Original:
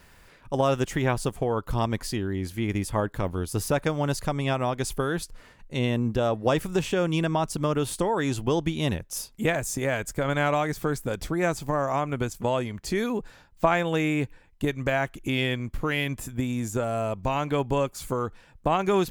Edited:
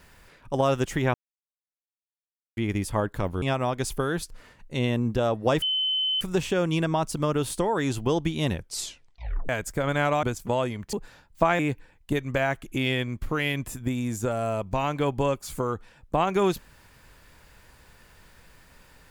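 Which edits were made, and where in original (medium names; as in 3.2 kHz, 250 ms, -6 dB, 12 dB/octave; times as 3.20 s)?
1.14–2.57 s: mute
3.42–4.42 s: delete
6.62 s: add tone 3.05 kHz -22.5 dBFS 0.59 s
8.97 s: tape stop 0.93 s
10.64–12.18 s: delete
12.88–13.15 s: delete
13.81–14.11 s: delete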